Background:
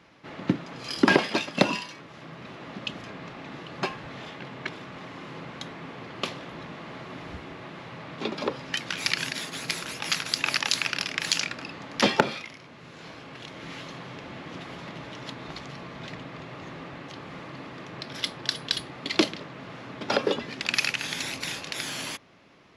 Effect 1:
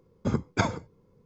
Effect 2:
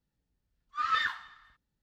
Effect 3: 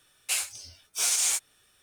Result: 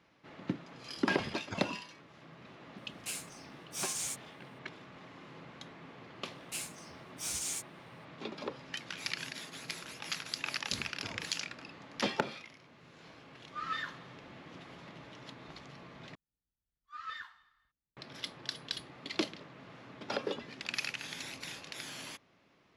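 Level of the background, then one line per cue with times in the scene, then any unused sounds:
background −11 dB
0:00.93: mix in 1 −17.5 dB
0:02.77: mix in 3 −12 dB
0:06.23: mix in 3 −12 dB
0:10.46: mix in 1 −13 dB + downward compressor, threshold −27 dBFS
0:12.78: mix in 2 −9 dB
0:16.15: overwrite with 2 −14.5 dB

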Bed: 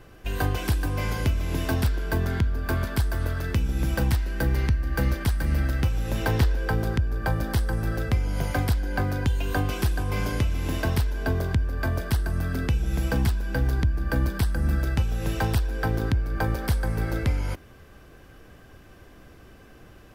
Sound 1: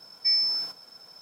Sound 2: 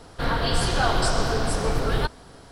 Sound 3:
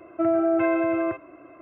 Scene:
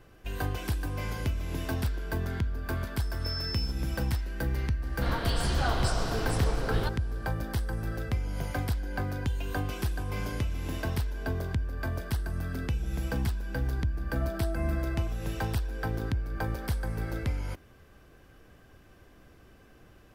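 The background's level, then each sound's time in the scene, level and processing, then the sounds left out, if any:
bed −6.5 dB
0:03.00: mix in 1 −4.5 dB + brickwall limiter −28.5 dBFS
0:04.82: mix in 2 −8 dB
0:13.96: mix in 3 −15 dB

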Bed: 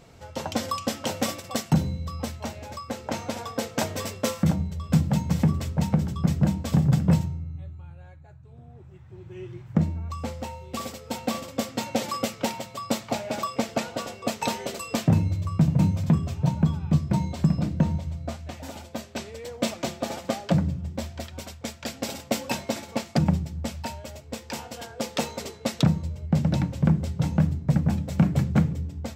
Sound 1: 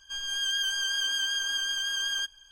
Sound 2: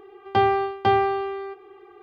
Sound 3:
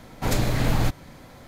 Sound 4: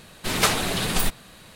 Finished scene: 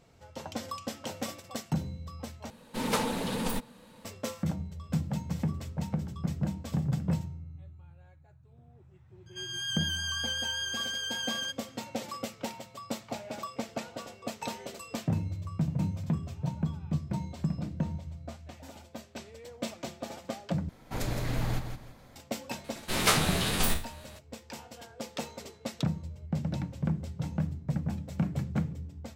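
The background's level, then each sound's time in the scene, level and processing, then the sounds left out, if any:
bed −9.5 dB
0:02.50: overwrite with 4 −12.5 dB + hollow resonant body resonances 240/490/880 Hz, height 15 dB, ringing for 40 ms
0:09.26: mix in 1 −4.5 dB + Butterworth high-pass 590 Hz
0:20.69: overwrite with 3 −10 dB + repeating echo 166 ms, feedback 27%, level −7.5 dB
0:22.64: mix in 4 −5.5 dB + peak hold with a decay on every bin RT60 0.35 s
not used: 2

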